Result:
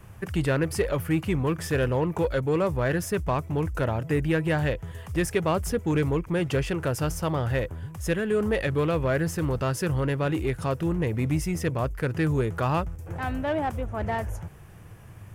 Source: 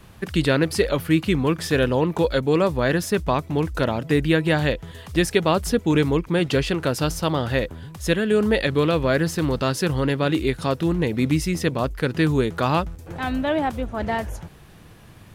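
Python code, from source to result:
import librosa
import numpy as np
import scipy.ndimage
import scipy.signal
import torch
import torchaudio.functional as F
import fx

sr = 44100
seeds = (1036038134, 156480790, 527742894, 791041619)

p1 = fx.graphic_eq_15(x, sr, hz=(100, 250, 4000), db=(8, -5, -12))
p2 = 10.0 ** (-24.5 / 20.0) * np.tanh(p1 / 10.0 ** (-24.5 / 20.0))
p3 = p1 + (p2 * 10.0 ** (-3.0 / 20.0))
y = p3 * 10.0 ** (-6.5 / 20.0)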